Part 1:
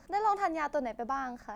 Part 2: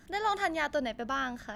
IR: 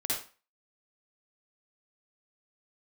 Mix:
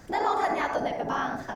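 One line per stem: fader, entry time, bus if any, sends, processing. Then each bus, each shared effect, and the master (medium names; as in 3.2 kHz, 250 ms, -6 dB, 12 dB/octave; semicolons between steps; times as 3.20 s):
+2.0 dB, 0.00 s, send -3 dB, whisper effect
+1.5 dB, 1 ms, no send, none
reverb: on, RT60 0.35 s, pre-delay 48 ms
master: compression 1.5:1, threshold -31 dBFS, peak gain reduction 6 dB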